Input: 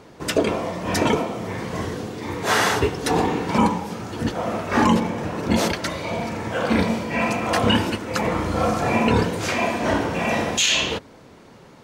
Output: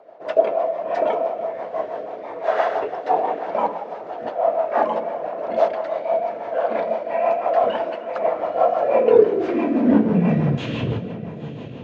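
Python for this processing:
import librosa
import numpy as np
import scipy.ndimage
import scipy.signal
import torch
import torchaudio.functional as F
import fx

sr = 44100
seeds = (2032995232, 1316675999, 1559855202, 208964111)

p1 = fx.cvsd(x, sr, bps=64000)
p2 = fx.spacing_loss(p1, sr, db_at_10k=40)
p3 = p2 + 10.0 ** (-17.5 / 20.0) * np.pad(p2, (int(308 * sr / 1000.0), 0))[:len(p2)]
p4 = fx.filter_sweep_highpass(p3, sr, from_hz=650.0, to_hz=120.0, start_s=8.74, end_s=10.73, q=7.4)
p5 = p4 + fx.echo_diffused(p4, sr, ms=926, feedback_pct=43, wet_db=-14.0, dry=0)
p6 = fx.rotary(p5, sr, hz=6.0)
y = fx.low_shelf(p6, sr, hz=130.0, db=8.5)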